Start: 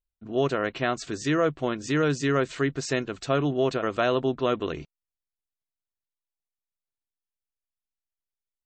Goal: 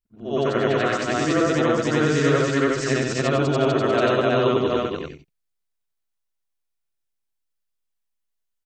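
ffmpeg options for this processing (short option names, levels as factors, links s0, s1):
-af "afftfilt=real='re':imag='-im':win_size=8192:overlap=0.75,aecho=1:1:102|201.2|285.7:0.355|0.251|0.891,volume=2.24"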